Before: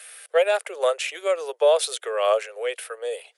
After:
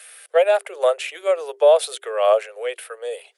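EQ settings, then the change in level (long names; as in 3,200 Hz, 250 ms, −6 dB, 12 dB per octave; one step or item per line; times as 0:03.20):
mains-hum notches 50/100/150/200/250/300/350/400 Hz
dynamic equaliser 6,000 Hz, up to −5 dB, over −48 dBFS, Q 1.5
dynamic equaliser 690 Hz, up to +6 dB, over −30 dBFS, Q 1.8
0.0 dB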